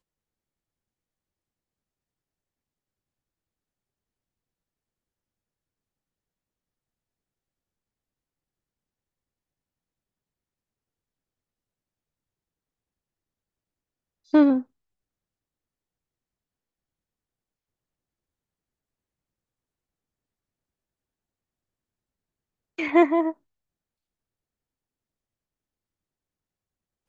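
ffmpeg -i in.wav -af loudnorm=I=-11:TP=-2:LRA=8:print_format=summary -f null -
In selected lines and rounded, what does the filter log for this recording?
Input Integrated:    -21.7 LUFS
Input True Peak:      -6.8 dBTP
Input LRA:             2.9 LU
Input Threshold:     -32.8 LUFS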